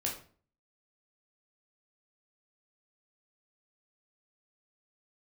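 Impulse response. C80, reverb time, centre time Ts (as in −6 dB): 12.0 dB, 0.45 s, 26 ms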